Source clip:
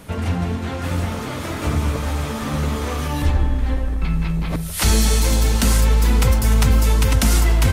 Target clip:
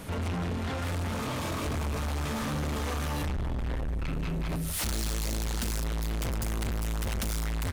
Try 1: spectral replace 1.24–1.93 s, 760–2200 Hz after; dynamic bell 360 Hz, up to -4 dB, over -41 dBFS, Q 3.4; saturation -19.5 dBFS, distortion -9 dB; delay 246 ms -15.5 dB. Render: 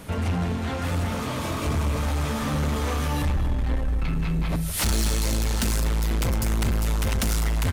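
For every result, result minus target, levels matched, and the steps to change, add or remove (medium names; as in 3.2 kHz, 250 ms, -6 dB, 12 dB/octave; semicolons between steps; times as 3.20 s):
echo-to-direct +11 dB; saturation: distortion -5 dB
change: delay 246 ms -26.5 dB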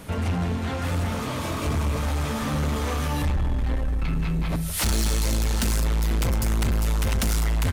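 saturation: distortion -5 dB
change: saturation -29 dBFS, distortion -4 dB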